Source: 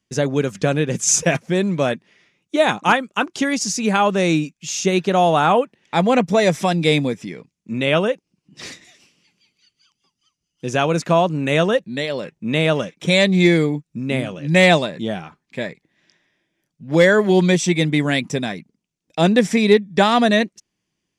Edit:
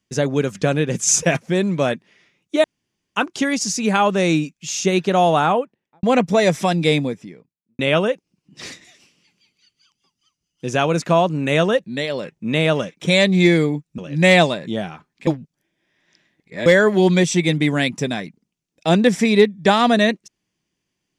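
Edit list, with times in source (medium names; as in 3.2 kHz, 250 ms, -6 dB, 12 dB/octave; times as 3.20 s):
2.64–3.16 s: room tone
5.31–6.03 s: studio fade out
6.78–7.79 s: studio fade out
13.98–14.30 s: delete
15.59–16.98 s: reverse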